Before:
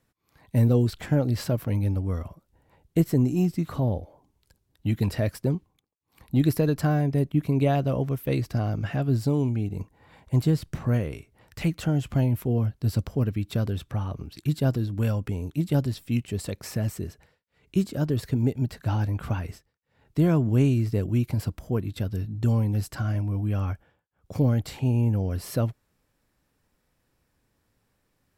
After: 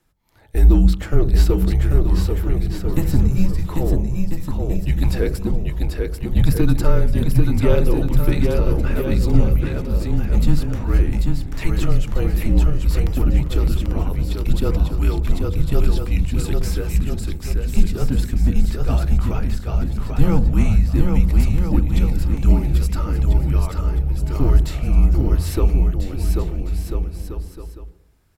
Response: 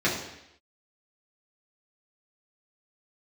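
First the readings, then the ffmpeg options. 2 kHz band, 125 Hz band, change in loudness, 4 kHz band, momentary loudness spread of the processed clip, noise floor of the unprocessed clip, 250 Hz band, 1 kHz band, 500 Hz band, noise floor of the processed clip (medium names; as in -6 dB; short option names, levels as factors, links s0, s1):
+5.5 dB, +5.0 dB, +6.0 dB, +6.5 dB, 7 LU, -73 dBFS, +3.5 dB, +3.5 dB, +4.5 dB, -33 dBFS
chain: -filter_complex "[0:a]aeval=exprs='0.355*(cos(1*acos(clip(val(0)/0.355,-1,1)))-cos(1*PI/2))+0.0126*(cos(6*acos(clip(val(0)/0.355,-1,1)))-cos(6*PI/2))':c=same,aecho=1:1:790|1343|1730|2001|2191:0.631|0.398|0.251|0.158|0.1,asplit=2[s0][s1];[1:a]atrim=start_sample=2205,lowpass=f=1700:w=0.5412,lowpass=f=1700:w=1.3066,lowshelf=f=310:g=11[s2];[s1][s2]afir=irnorm=-1:irlink=0,volume=0.0668[s3];[s0][s3]amix=inputs=2:normalize=0,afreqshift=-170,volume=1.68"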